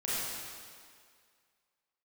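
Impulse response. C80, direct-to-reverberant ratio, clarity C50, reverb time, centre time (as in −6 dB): −2.5 dB, −9.5 dB, −5.0 dB, 2.0 s, 155 ms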